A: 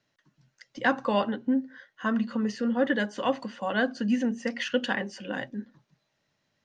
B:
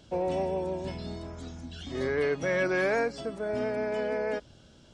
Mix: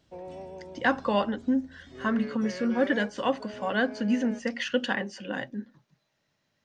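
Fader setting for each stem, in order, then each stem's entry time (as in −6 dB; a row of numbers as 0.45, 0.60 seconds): 0.0, −12.0 decibels; 0.00, 0.00 seconds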